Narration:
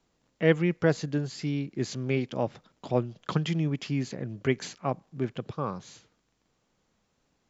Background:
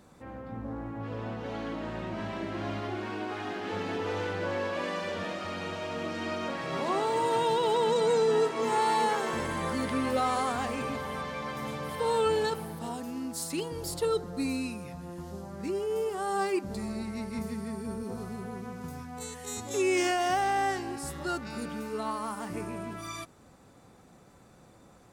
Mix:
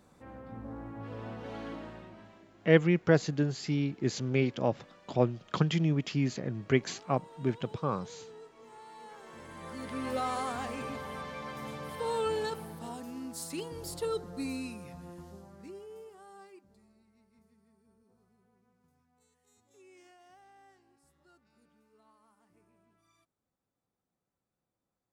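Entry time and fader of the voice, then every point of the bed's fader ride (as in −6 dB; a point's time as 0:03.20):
2.25 s, 0.0 dB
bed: 0:01.74 −5 dB
0:02.53 −25 dB
0:08.92 −25 dB
0:10.12 −5 dB
0:15.07 −5 dB
0:17.02 −32 dB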